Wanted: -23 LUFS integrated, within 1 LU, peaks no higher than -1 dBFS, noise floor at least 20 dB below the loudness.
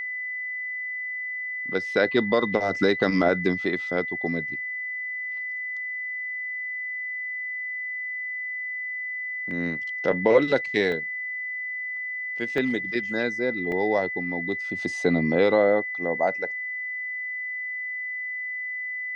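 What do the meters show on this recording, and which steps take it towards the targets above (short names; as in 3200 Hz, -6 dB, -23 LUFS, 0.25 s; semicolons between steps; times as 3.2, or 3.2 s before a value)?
dropouts 4; longest dropout 1.5 ms; steady tone 2000 Hz; tone level -29 dBFS; loudness -26.0 LUFS; peak -7.0 dBFS; loudness target -23.0 LUFS
-> interpolate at 9.51/10.92/12.58/13.72, 1.5 ms; notch 2000 Hz, Q 30; gain +3 dB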